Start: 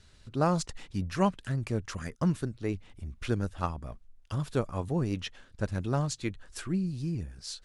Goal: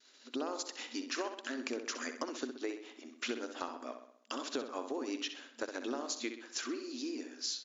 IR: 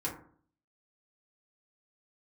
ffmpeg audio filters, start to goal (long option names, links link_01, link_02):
-filter_complex "[0:a]highshelf=frequency=3800:gain=9.5,agate=range=-33dB:threshold=-50dB:ratio=3:detection=peak,afftfilt=real='re*between(b*sr/4096,230,7300)':imag='im*between(b*sr/4096,230,7300)':win_size=4096:overlap=0.75,acrossover=split=360[link_01][link_02];[link_02]alimiter=limit=-21.5dB:level=0:latency=1:release=156[link_03];[link_01][link_03]amix=inputs=2:normalize=0,acompressor=threshold=-39dB:ratio=5,asplit=2[link_04][link_05];[link_05]adelay=64,lowpass=frequency=4800:poles=1,volume=-8dB,asplit=2[link_06][link_07];[link_07]adelay=64,lowpass=frequency=4800:poles=1,volume=0.53,asplit=2[link_08][link_09];[link_09]adelay=64,lowpass=frequency=4800:poles=1,volume=0.53,asplit=2[link_10][link_11];[link_11]adelay=64,lowpass=frequency=4800:poles=1,volume=0.53,asplit=2[link_12][link_13];[link_13]adelay=64,lowpass=frequency=4800:poles=1,volume=0.53,asplit=2[link_14][link_15];[link_15]adelay=64,lowpass=frequency=4800:poles=1,volume=0.53[link_16];[link_06][link_08][link_10][link_12][link_14][link_16]amix=inputs=6:normalize=0[link_17];[link_04][link_17]amix=inputs=2:normalize=0,volume=3.5dB"